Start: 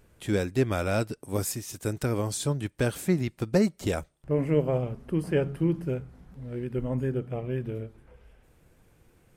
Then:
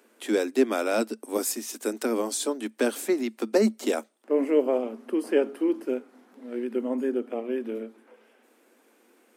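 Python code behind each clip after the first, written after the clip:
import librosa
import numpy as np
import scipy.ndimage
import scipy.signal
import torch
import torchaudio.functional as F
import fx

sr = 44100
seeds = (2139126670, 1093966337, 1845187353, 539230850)

y = fx.dynamic_eq(x, sr, hz=1800.0, q=0.8, threshold_db=-43.0, ratio=4.0, max_db=-3)
y = scipy.signal.sosfilt(scipy.signal.cheby1(8, 1.0, 220.0, 'highpass', fs=sr, output='sos'), y)
y = y * 10.0 ** (4.5 / 20.0)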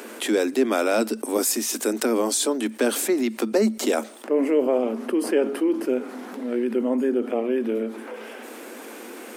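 y = fx.env_flatten(x, sr, amount_pct=50)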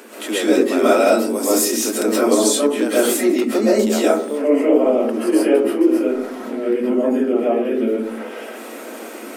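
y = fx.rev_freeverb(x, sr, rt60_s=0.53, hf_ratio=0.3, predelay_ms=90, drr_db=-8.5)
y = y * 10.0 ** (-3.0 / 20.0)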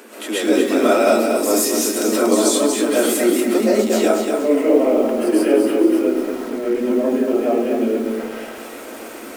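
y = fx.echo_crushed(x, sr, ms=236, feedback_pct=35, bits=6, wet_db=-5.0)
y = y * 10.0 ** (-1.0 / 20.0)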